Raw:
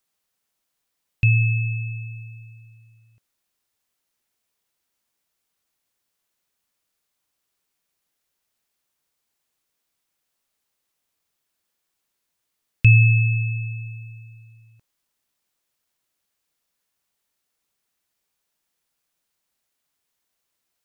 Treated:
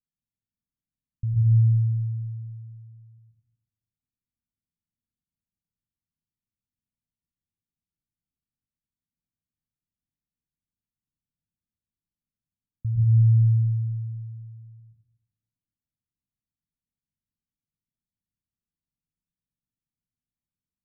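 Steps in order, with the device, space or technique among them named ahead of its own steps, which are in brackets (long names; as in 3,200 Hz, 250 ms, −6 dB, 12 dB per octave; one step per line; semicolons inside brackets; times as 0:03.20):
club heard from the street (brickwall limiter −14.5 dBFS, peak gain reduction 10.5 dB; low-pass filter 230 Hz 24 dB per octave; convolution reverb RT60 0.90 s, pre-delay 105 ms, DRR −4.5 dB)
level −4.5 dB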